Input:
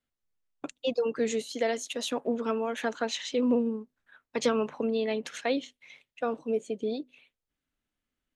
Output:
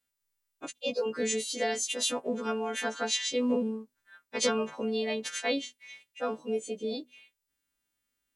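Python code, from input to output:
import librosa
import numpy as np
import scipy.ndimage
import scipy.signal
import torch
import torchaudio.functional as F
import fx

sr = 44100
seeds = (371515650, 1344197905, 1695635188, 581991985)

y = fx.freq_snap(x, sr, grid_st=2)
y = y * librosa.db_to_amplitude(-1.5)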